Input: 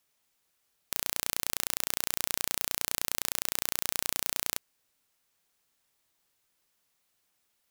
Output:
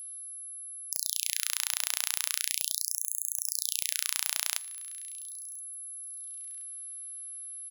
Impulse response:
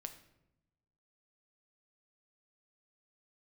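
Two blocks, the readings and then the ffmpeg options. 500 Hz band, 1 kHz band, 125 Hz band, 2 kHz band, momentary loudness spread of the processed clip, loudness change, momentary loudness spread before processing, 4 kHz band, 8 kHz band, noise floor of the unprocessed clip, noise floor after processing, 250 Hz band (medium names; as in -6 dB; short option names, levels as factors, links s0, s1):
under -20 dB, -6.5 dB, under -40 dB, -0.5 dB, 10 LU, -1.0 dB, 2 LU, +2.5 dB, +3.5 dB, -76 dBFS, -44 dBFS, under -40 dB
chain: -filter_complex "[0:a]highshelf=f=7100:g=-8.5,aeval=exprs='val(0)+0.00316*sin(2*PI*11000*n/s)':c=same,alimiter=limit=0.282:level=0:latency=1,tiltshelf=f=1300:g=-7.5,aecho=1:1:1024|2048:0.0708|0.0177,asplit=2[s0][s1];[1:a]atrim=start_sample=2205[s2];[s1][s2]afir=irnorm=-1:irlink=0,volume=0.668[s3];[s0][s3]amix=inputs=2:normalize=0,afftfilt=real='re*gte(b*sr/1024,650*pow(6500/650,0.5+0.5*sin(2*PI*0.39*pts/sr)))':imag='im*gte(b*sr/1024,650*pow(6500/650,0.5+0.5*sin(2*PI*0.39*pts/sr)))':win_size=1024:overlap=0.75,volume=1.12"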